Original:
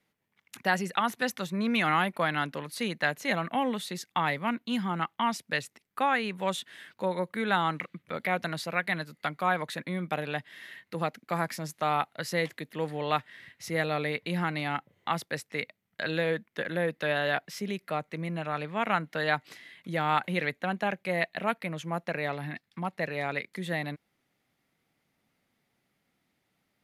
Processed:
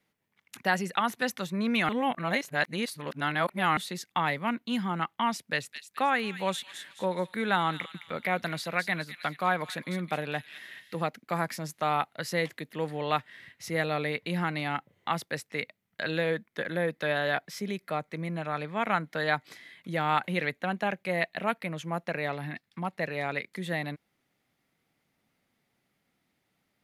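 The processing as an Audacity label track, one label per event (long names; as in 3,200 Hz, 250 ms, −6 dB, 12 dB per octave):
1.890000	3.770000	reverse
5.410000	11.020000	delay with a high-pass on its return 214 ms, feedback 40%, high-pass 3,000 Hz, level −5.5 dB
16.300000	19.800000	notch filter 2,800 Hz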